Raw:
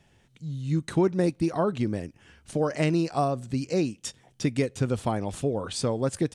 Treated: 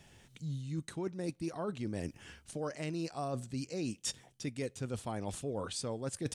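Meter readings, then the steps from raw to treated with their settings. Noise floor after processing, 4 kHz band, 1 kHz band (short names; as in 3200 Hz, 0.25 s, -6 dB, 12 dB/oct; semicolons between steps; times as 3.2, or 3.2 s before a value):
-65 dBFS, -6.0 dB, -12.0 dB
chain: high shelf 3700 Hz +7 dB; reverse; compressor 12:1, threshold -35 dBFS, peak gain reduction 18.5 dB; reverse; gain +1 dB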